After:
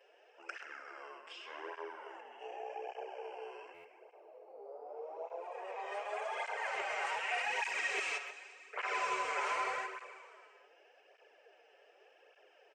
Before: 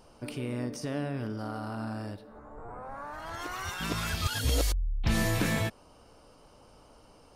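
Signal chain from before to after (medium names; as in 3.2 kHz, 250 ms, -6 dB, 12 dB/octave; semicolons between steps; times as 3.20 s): Chebyshev high-pass 730 Hz, order 5; resonant high shelf 5.3 kHz -6.5 dB, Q 3; gated-style reverb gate 490 ms falling, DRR 10 dB; speed mistake 78 rpm record played at 45 rpm; speakerphone echo 130 ms, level -7 dB; buffer glitch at 3.74 s, samples 512, times 8; cancelling through-zero flanger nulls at 0.85 Hz, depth 6.7 ms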